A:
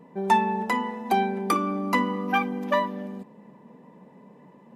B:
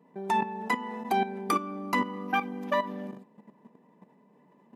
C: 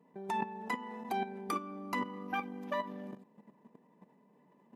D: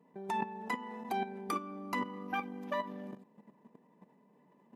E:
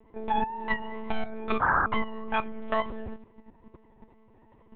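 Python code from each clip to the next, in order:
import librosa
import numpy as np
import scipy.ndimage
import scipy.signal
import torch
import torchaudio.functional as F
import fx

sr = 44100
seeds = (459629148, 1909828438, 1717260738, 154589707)

y1 = fx.level_steps(x, sr, step_db=12)
y1 = scipy.signal.sosfilt(scipy.signal.butter(2, 160.0, 'highpass', fs=sr, output='sos'), y1)
y1 = fx.notch(y1, sr, hz=520.0, q=12.0)
y2 = fx.level_steps(y1, sr, step_db=11)
y3 = y2
y4 = fx.vibrato(y3, sr, rate_hz=2.2, depth_cents=76.0)
y4 = fx.spec_paint(y4, sr, seeds[0], shape='noise', start_s=1.61, length_s=0.25, low_hz=740.0, high_hz=1700.0, level_db=-32.0)
y4 = fx.lpc_monotone(y4, sr, seeds[1], pitch_hz=220.0, order=10)
y4 = y4 * 10.0 ** (8.5 / 20.0)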